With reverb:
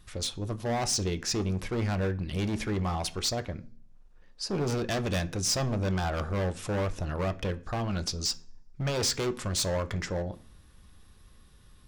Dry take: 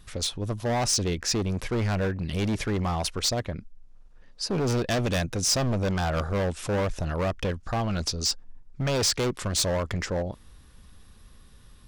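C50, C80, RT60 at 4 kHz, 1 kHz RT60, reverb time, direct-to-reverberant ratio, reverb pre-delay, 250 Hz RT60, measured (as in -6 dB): 19.5 dB, 24.0 dB, 0.45 s, 0.40 s, 0.45 s, 9.0 dB, 3 ms, 0.65 s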